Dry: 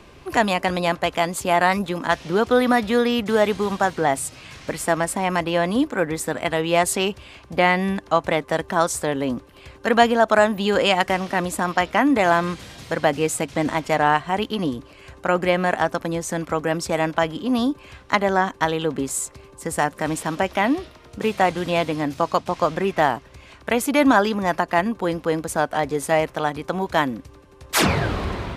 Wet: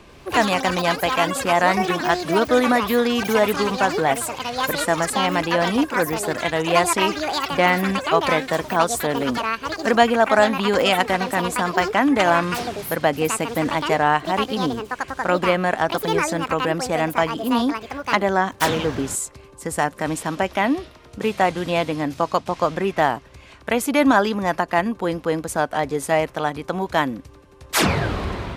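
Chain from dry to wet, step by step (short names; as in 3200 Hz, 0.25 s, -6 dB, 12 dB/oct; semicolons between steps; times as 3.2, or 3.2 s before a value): echoes that change speed 94 ms, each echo +7 st, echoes 3, each echo -6 dB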